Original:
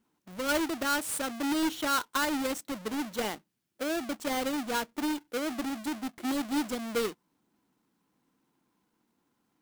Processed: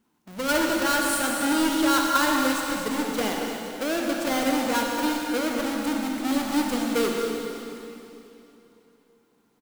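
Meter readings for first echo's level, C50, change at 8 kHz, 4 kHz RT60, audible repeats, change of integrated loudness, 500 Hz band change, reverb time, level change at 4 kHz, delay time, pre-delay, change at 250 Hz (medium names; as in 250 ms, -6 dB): -11.0 dB, 0.0 dB, +7.0 dB, 2.8 s, 1, +7.0 dB, +7.5 dB, 3.0 s, +7.0 dB, 228 ms, 37 ms, +7.5 dB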